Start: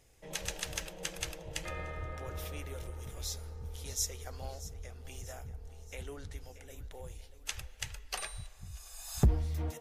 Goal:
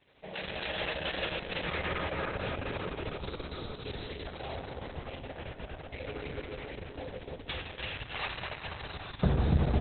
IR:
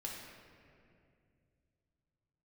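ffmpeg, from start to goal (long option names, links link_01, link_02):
-filter_complex "[0:a]acrossover=split=4900[link_01][link_02];[link_02]acompressor=threshold=-56dB:ratio=4:attack=1:release=60[link_03];[link_01][link_03]amix=inputs=2:normalize=0,highpass=frequency=200:poles=1,asettb=1/sr,asplit=3[link_04][link_05][link_06];[link_04]atrim=end=5.414[link_07];[link_05]atrim=start=5.41:end=6.54,asetpts=PTS-STARTPTS,afade=type=in:duration=0.004:curve=qsin,afade=type=out:start_time=1.126:duration=0.004:curve=qsin,aeval=exprs='val(0)+0.000251*(sin(2*PI*50*n/s)+sin(2*PI*2*50*n/s)/2+sin(2*PI*3*50*n/s)/3+sin(2*PI*4*50*n/s)/4+sin(2*PI*5*50*n/s)/5)':channel_layout=same[link_08];[link_06]atrim=start=6.536[link_09];[link_07][link_08]acrossfade=duration=0.004:curve1=hsin:curve2=qsin[link_10];[link_10][link_09]acrossfade=duration=0.004:curve1=qsin:curve2=hsin,acrossover=split=870[link_11][link_12];[link_12]asoftclip=type=tanh:threshold=-33.5dB[link_13];[link_11][link_13]amix=inputs=2:normalize=0,aecho=1:1:290|507.5|670.6|793|884.7:0.631|0.398|0.251|0.158|0.1[link_14];[1:a]atrim=start_sample=2205,asetrate=29106,aresample=44100[link_15];[link_14][link_15]afir=irnorm=-1:irlink=0,volume=6.5dB" -ar 48000 -c:a libopus -b:a 6k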